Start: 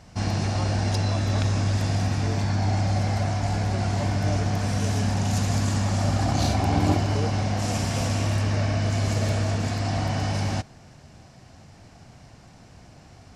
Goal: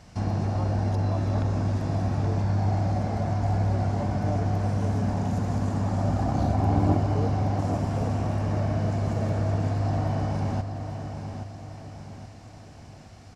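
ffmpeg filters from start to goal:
ffmpeg -i in.wav -filter_complex "[0:a]acrossover=split=1300[link_01][link_02];[link_02]acompressor=threshold=-50dB:ratio=6[link_03];[link_01][link_03]amix=inputs=2:normalize=0,aecho=1:1:825|1650|2475|3300|4125:0.398|0.179|0.0806|0.0363|0.0163,volume=-1dB" out.wav

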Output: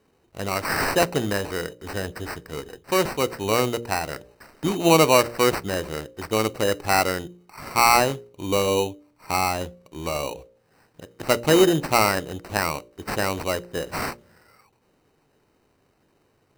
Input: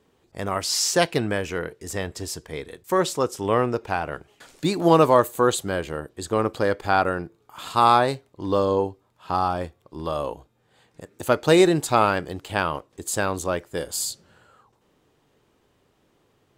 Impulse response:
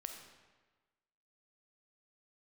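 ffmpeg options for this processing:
-af "acrusher=samples=13:mix=1:aa=0.000001,bandreject=frequency=58.97:width_type=h:width=4,bandreject=frequency=117.94:width_type=h:width=4,bandreject=frequency=176.91:width_type=h:width=4,bandreject=frequency=235.88:width_type=h:width=4,bandreject=frequency=294.85:width_type=h:width=4,bandreject=frequency=353.82:width_type=h:width=4,bandreject=frequency=412.79:width_type=h:width=4,bandreject=frequency=471.76:width_type=h:width=4,bandreject=frequency=530.73:width_type=h:width=4,bandreject=frequency=589.7:width_type=h:width=4"

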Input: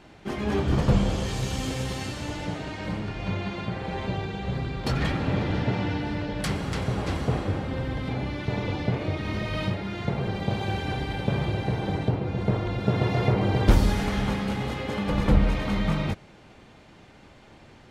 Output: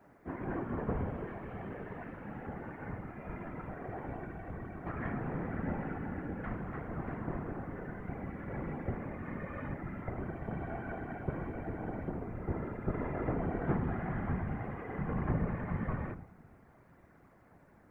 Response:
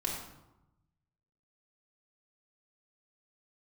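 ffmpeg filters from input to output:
-filter_complex "[0:a]highpass=frequency=210:width_type=q:width=0.5412,highpass=frequency=210:width_type=q:width=1.307,lowpass=frequency=2000:width_type=q:width=0.5176,lowpass=frequency=2000:width_type=q:width=0.7071,lowpass=frequency=2000:width_type=q:width=1.932,afreqshift=-72,acrusher=bits=11:mix=0:aa=0.000001,asubboost=boost=2:cutoff=190,asplit=2[link_01][link_02];[1:a]atrim=start_sample=2205,highshelf=frequency=5600:gain=-2.5[link_03];[link_02][link_03]afir=irnorm=-1:irlink=0,volume=-13.5dB[link_04];[link_01][link_04]amix=inputs=2:normalize=0,afftfilt=real='hypot(re,im)*cos(2*PI*random(0))':imag='hypot(re,im)*sin(2*PI*random(1))':win_size=512:overlap=0.75,volume=-4dB"

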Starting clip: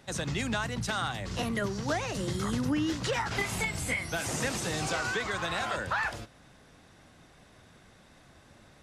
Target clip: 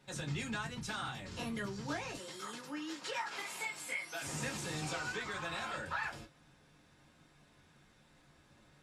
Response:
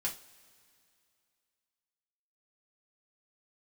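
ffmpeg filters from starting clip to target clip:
-filter_complex "[0:a]asettb=1/sr,asplit=3[link_01][link_02][link_03];[link_01]atrim=end=2.164[link_04];[link_02]atrim=start=2.16:end=4.22,asetpts=PTS-STARTPTS,afade=type=in:duration=0.004:curve=qsin,afade=type=out:start_time=2.056:duration=0.004:curve=qsin,highpass=460[link_05];[link_03]atrim=start=4.216[link_06];[link_04][link_05]acrossfade=duration=0.004:curve1=hsin:curve2=qsin[link_07];[link_07][link_06]acrossfade=duration=0.004:curve1=qsin:curve2=hsin[link_08];[1:a]atrim=start_sample=2205,atrim=end_sample=3087,asetrate=70560,aresample=44100[link_09];[link_08][link_09]afir=irnorm=-1:irlink=0,volume=-5.5dB"

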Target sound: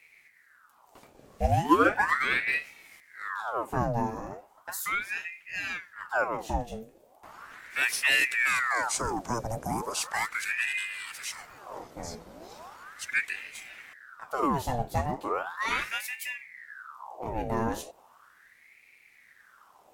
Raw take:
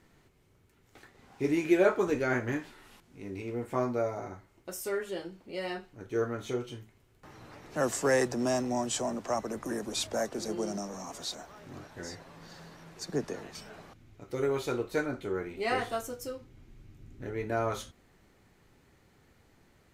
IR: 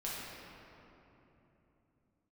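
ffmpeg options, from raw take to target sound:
-af "tiltshelf=frequency=740:gain=9.5,crystalizer=i=5.5:c=0,aeval=exprs='val(0)*sin(2*PI*1300*n/s+1300*0.75/0.37*sin(2*PI*0.37*n/s))':channel_layout=same"

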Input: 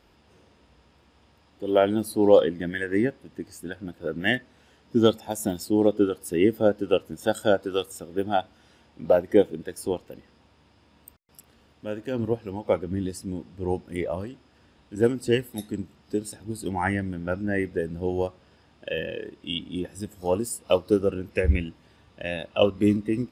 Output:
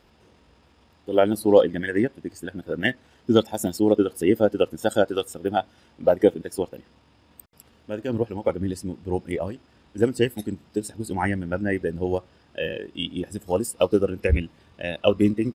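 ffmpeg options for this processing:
ffmpeg -i in.wav -af "atempo=1.5,volume=2dB" out.wav

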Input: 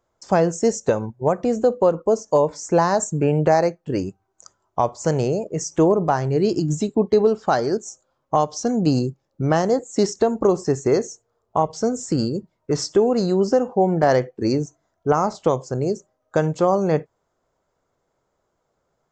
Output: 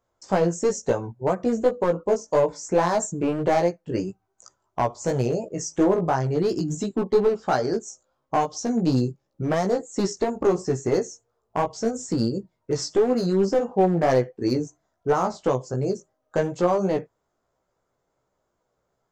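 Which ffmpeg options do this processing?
ffmpeg -i in.wav -af "aeval=exprs='clip(val(0),-1,0.2)':channel_layout=same,flanger=delay=15.5:depth=2.1:speed=2.9" out.wav

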